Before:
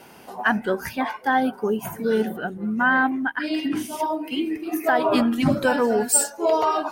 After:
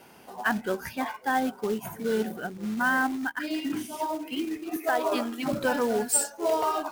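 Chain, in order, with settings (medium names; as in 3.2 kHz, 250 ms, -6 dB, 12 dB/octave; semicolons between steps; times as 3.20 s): 4.76–5.53 s: Chebyshev high-pass 370 Hz, order 2; short-mantissa float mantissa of 2-bit; trim -5.5 dB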